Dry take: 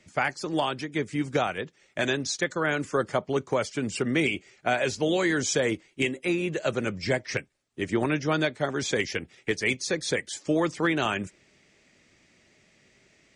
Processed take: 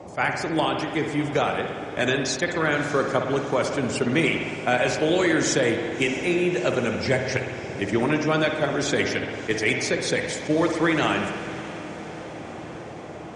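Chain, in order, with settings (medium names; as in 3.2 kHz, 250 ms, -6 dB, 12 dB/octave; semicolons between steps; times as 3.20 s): band noise 69–810 Hz -43 dBFS; on a send: echo that smears into a reverb 641 ms, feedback 68%, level -15.5 dB; on the sum: spring tank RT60 1.6 s, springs 56 ms, chirp 35 ms, DRR 4 dB; attacks held to a fixed rise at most 410 dB/s; trim +2.5 dB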